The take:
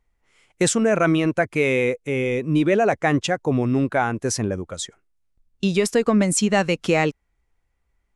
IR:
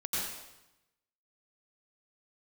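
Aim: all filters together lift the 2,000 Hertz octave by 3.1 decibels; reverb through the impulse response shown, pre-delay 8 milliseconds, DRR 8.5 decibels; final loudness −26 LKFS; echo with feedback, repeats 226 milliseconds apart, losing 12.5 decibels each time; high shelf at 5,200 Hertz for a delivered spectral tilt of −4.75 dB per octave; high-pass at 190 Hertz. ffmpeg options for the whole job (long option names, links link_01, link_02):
-filter_complex "[0:a]highpass=190,equalizer=frequency=2000:width_type=o:gain=5,highshelf=frequency=5200:gain=-8,aecho=1:1:226|452|678:0.237|0.0569|0.0137,asplit=2[link_01][link_02];[1:a]atrim=start_sample=2205,adelay=8[link_03];[link_02][link_03]afir=irnorm=-1:irlink=0,volume=-14dB[link_04];[link_01][link_04]amix=inputs=2:normalize=0,volume=-5.5dB"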